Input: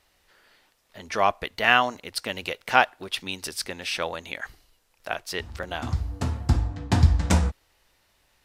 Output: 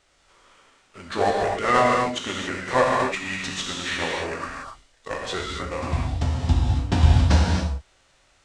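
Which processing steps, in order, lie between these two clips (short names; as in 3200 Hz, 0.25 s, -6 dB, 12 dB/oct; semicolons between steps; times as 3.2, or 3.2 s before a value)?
CVSD 64 kbps; non-linear reverb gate 0.31 s flat, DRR -2.5 dB; formant shift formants -6 st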